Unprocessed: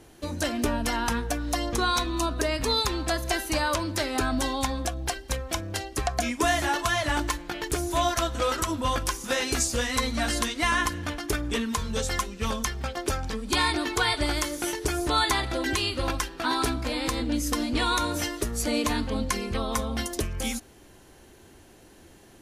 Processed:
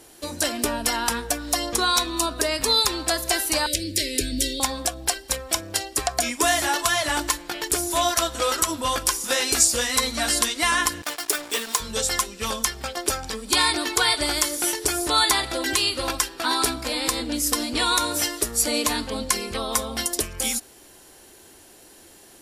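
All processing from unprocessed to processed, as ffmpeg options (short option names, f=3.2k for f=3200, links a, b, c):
-filter_complex "[0:a]asettb=1/sr,asplit=3[a][b][c];[a]atrim=end=3.664[d];[b]atrim=start=3.66:end=4.6,asetpts=PTS-STARTPTS,afade=t=in:d=0.004:c=qsin,afade=t=out:st=0.936:d=0.004:c=qsin,asuperstop=centerf=1000:order=8:qfactor=0.71,lowshelf=f=84:g=9.5[e];[c]atrim=start=4.596[f];[d][e]acrossfade=d=0.004:c1=hsin:c2=qsin[g];[g][f]acrossfade=d=0.004:c1=qsin:c2=hsin,asettb=1/sr,asplit=3[h][i][j];[h]atrim=end=11.024[k];[i]atrim=start=11.02:end=11.8,asetpts=PTS-STARTPTS,afade=t=in:d=0.004:c=qsin,afade=t=out:st=0.776:d=0.004:c=qsin,highpass=380,acrusher=bits=5:mix=0:aa=0.5[l];[j]atrim=start=11.796[m];[k][l]acrossfade=d=0.004:c1=hsin:c2=qsin[n];[n][m]acrossfade=d=0.004:c1=qsin:c2=hsin,bass=f=250:g=-9,treble=f=4k:g=9,bandreject=f=6.3k:w=11,volume=2.5dB"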